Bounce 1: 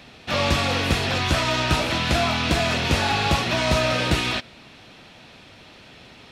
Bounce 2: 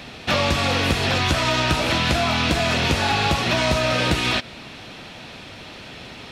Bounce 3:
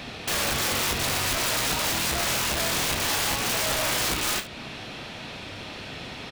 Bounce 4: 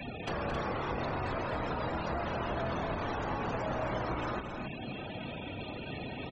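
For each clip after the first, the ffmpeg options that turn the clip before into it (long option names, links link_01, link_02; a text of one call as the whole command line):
ffmpeg -i in.wav -af "acompressor=threshold=-25dB:ratio=6,volume=8dB" out.wav
ffmpeg -i in.wav -filter_complex "[0:a]alimiter=limit=-15dB:level=0:latency=1:release=274,aeval=exprs='(mod(11.2*val(0)+1,2)-1)/11.2':channel_layout=same,asplit=2[link_01][link_02];[link_02]aecho=0:1:30|72:0.376|0.2[link_03];[link_01][link_03]amix=inputs=2:normalize=0" out.wav
ffmpeg -i in.wav -filter_complex "[0:a]acrossover=split=210|470|1300[link_01][link_02][link_03][link_04];[link_01]acompressor=threshold=-39dB:ratio=4[link_05];[link_02]acompressor=threshold=-42dB:ratio=4[link_06];[link_03]acompressor=threshold=-37dB:ratio=4[link_07];[link_04]acompressor=threshold=-40dB:ratio=4[link_08];[link_05][link_06][link_07][link_08]amix=inputs=4:normalize=0,afftfilt=real='re*gte(hypot(re,im),0.02)':imag='im*gte(hypot(re,im),0.02)':win_size=1024:overlap=0.75,aecho=1:1:221.6|268.2:0.355|0.447" out.wav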